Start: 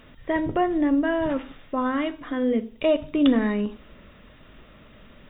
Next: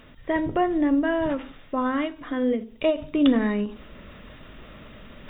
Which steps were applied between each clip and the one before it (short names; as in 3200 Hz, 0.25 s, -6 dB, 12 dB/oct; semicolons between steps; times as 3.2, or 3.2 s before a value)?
reverse; upward compressor, threshold -36 dBFS; reverse; ending taper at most 190 dB/s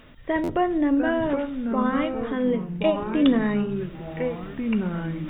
echoes that change speed 0.622 s, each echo -4 st, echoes 3, each echo -6 dB; stuck buffer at 0.43, samples 512, times 4